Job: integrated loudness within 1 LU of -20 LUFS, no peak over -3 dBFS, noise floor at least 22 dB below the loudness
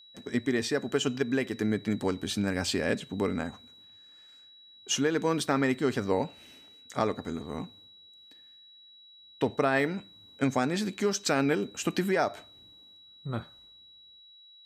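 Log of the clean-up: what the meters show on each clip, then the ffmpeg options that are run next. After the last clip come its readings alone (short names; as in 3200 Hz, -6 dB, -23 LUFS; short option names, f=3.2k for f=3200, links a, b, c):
steady tone 3900 Hz; tone level -52 dBFS; loudness -30.0 LUFS; peak -12.0 dBFS; loudness target -20.0 LUFS
-> -af "bandreject=f=3.9k:w=30"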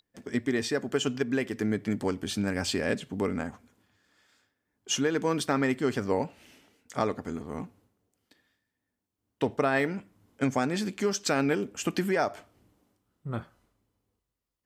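steady tone none; loudness -30.0 LUFS; peak -12.0 dBFS; loudness target -20.0 LUFS
-> -af "volume=10dB,alimiter=limit=-3dB:level=0:latency=1"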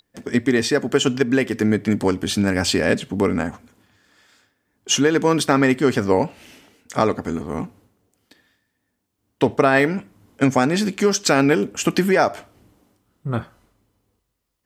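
loudness -20.0 LUFS; peak -3.0 dBFS; noise floor -74 dBFS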